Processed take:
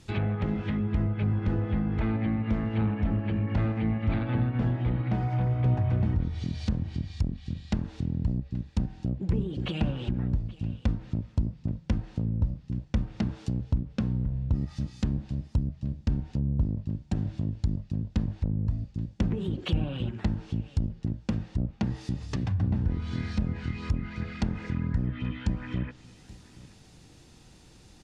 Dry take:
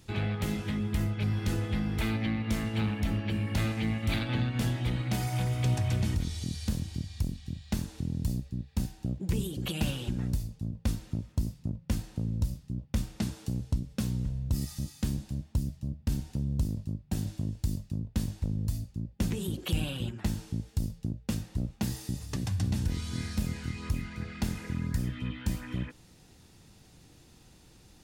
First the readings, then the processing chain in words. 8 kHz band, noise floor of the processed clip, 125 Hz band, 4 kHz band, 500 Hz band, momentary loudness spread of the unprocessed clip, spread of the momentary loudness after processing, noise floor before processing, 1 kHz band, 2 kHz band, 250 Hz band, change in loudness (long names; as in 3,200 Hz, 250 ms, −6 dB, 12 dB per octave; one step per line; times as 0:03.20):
below −10 dB, −54 dBFS, +3.0 dB, −4.5 dB, +3.0 dB, 6 LU, 6 LU, −57 dBFS, +2.5 dB, −2.0 dB, +3.0 dB, +2.5 dB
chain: low-pass filter 9,100 Hz
single-tap delay 828 ms −21 dB
treble cut that deepens with the level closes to 1,300 Hz, closed at −26.5 dBFS
level +3 dB